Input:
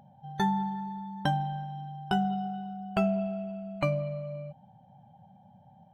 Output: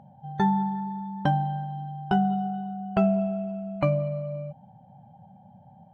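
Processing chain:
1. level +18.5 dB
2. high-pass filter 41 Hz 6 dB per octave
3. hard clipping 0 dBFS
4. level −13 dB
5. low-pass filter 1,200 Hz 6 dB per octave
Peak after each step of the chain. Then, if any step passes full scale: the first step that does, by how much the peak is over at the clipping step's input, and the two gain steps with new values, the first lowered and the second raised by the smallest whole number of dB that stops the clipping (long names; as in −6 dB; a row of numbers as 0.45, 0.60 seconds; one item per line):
+3.5, +3.5, 0.0, −13.0, −13.0 dBFS
step 1, 3.5 dB
step 1 +14.5 dB, step 4 −9 dB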